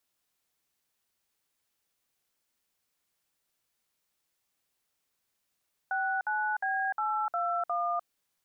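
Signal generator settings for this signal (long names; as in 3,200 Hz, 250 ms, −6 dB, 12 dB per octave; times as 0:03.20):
touch tones "69B821", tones 300 ms, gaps 57 ms, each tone −30 dBFS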